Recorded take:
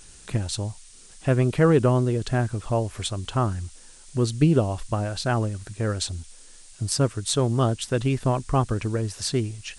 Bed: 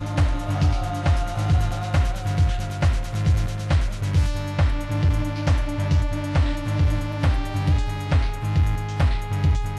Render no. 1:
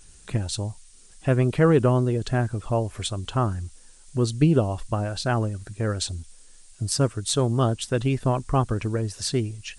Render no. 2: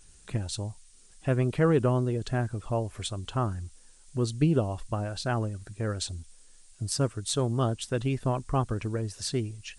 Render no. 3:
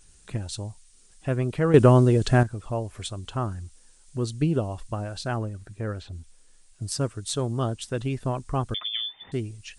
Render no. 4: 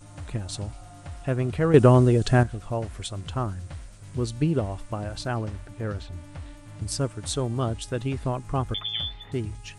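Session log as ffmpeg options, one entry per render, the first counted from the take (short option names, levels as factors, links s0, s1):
-af "afftdn=nr=6:nf=-48"
-af "volume=0.562"
-filter_complex "[0:a]asettb=1/sr,asplit=3[s0][s1][s2];[s0]atrim=end=5.364[s3];[s1]atrim=start=5.36:end=6.82,asetpts=PTS-STARTPTS,afade=t=in:d=0.004:c=qsin,afade=t=out:st=1.456:d=0.004:c=qsin,acrossover=split=2900[s4][s5];[s5]acompressor=threshold=0.00112:ratio=4:attack=1:release=60[s6];[s4][s6]amix=inputs=2:normalize=0[s7];[s2]atrim=start=6.816[s8];[s3][s7]acrossfade=d=0.004:c1=hsin:c2=qsin[s9];[s9][s8]acrossfade=d=0.004:c1=qsin:c2=hsin,asettb=1/sr,asplit=3[s10][s11][s12];[s10]atrim=end=8.744[s13];[s11]atrim=start=8.74:end=9.32,asetpts=PTS-STARTPTS,afade=t=in:d=0.004:c=qsin,afade=t=out:st=0.576:d=0.004:c=qsin,lowpass=f=3100:t=q:w=0.5098,lowpass=f=3100:t=q:w=0.6013,lowpass=f=3100:t=q:w=0.9,lowpass=f=3100:t=q:w=2.563,afreqshift=-3600[s14];[s12]atrim=start=9.316[s15];[s13][s14]acrossfade=d=0.004:c1=hsin:c2=qsin[s16];[s16][s15]acrossfade=d=0.004:c1=qsin:c2=hsin,asplit=3[s17][s18][s19];[s17]atrim=end=1.742[s20];[s18]atrim=start=1.738:end=2.432,asetpts=PTS-STARTPTS,volume=2.99[s21];[s19]atrim=start=2.428[s22];[s20][s21]acrossfade=d=0.004:c1=hsin:c2=hsin[s23];[s23][s22]acrossfade=d=0.004:c1=hsin:c2=hsin"
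-filter_complex "[1:a]volume=0.106[s0];[0:a][s0]amix=inputs=2:normalize=0"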